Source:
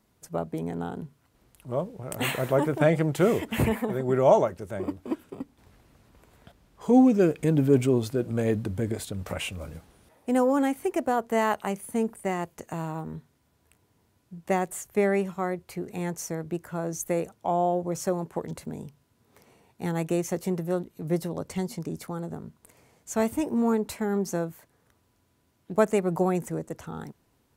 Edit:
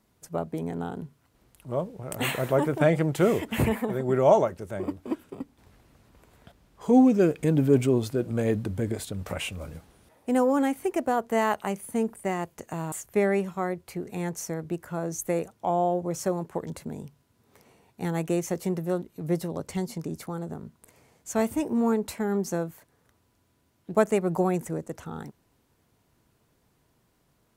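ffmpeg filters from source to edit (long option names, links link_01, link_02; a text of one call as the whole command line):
ffmpeg -i in.wav -filter_complex "[0:a]asplit=2[link_01][link_02];[link_01]atrim=end=12.922[link_03];[link_02]atrim=start=14.728[link_04];[link_03][link_04]acrossfade=duration=0.004:curve1=hsin:curve2=hsin" out.wav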